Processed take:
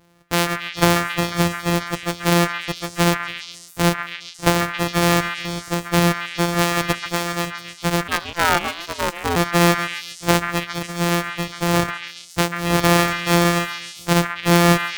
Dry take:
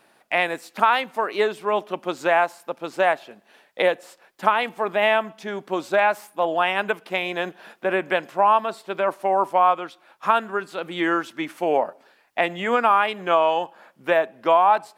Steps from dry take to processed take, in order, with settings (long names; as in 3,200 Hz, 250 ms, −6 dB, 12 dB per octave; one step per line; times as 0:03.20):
samples sorted by size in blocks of 256 samples
echo through a band-pass that steps 137 ms, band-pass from 1,600 Hz, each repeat 0.7 octaves, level −2 dB
0:08.07–0:09.35: ring modulation 1,500 Hz → 590 Hz
level +2 dB